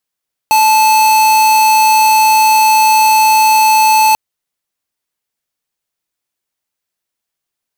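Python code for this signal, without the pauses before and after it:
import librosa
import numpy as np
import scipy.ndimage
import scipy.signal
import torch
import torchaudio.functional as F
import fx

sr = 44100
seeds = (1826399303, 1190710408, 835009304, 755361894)

y = fx.tone(sr, length_s=3.64, wave='square', hz=871.0, level_db=-8.5)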